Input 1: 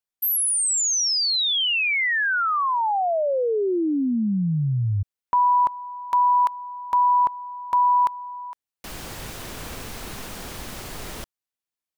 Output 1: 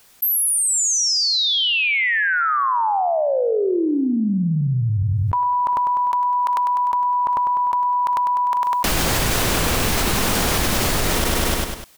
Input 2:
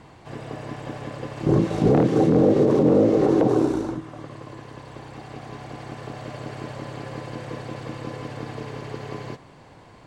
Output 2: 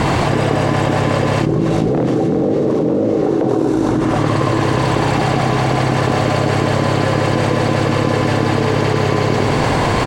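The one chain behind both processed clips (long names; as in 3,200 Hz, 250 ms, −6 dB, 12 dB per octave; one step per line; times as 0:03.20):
on a send: repeating echo 100 ms, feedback 51%, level −9.5 dB
on the sum: envelope flattener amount 100%
level −1.5 dB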